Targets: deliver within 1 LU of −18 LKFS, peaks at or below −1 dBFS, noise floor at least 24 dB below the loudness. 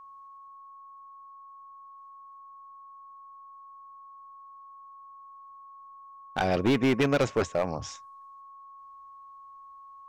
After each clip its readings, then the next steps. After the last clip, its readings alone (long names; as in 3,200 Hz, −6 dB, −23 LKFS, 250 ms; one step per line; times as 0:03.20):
share of clipped samples 0.6%; peaks flattened at −18.5 dBFS; interfering tone 1,100 Hz; level of the tone −46 dBFS; integrated loudness −27.0 LKFS; sample peak −18.5 dBFS; target loudness −18.0 LKFS
→ clipped peaks rebuilt −18.5 dBFS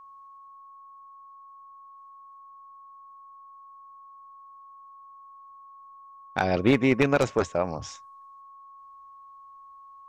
share of clipped samples 0.0%; interfering tone 1,100 Hz; level of the tone −46 dBFS
→ notch filter 1,100 Hz, Q 30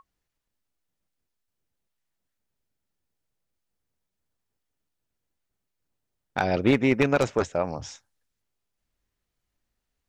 interfering tone none found; integrated loudness −24.0 LKFS; sample peak −9.5 dBFS; target loudness −18.0 LKFS
→ level +6 dB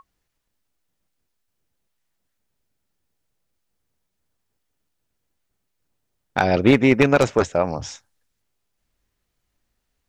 integrated loudness −18.0 LKFS; sample peak −3.5 dBFS; background noise floor −76 dBFS